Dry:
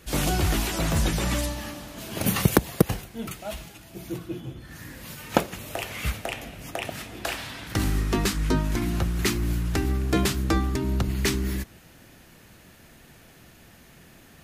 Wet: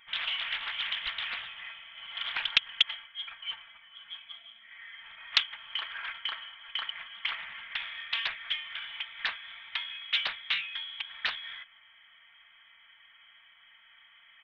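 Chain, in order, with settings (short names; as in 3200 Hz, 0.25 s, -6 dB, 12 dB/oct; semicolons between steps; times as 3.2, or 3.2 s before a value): HPF 350 Hz 24 dB/oct; fixed phaser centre 910 Hz, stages 6; comb 4.3 ms, depth 66%; inverted band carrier 3700 Hz; Doppler distortion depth 0.76 ms; gain -1 dB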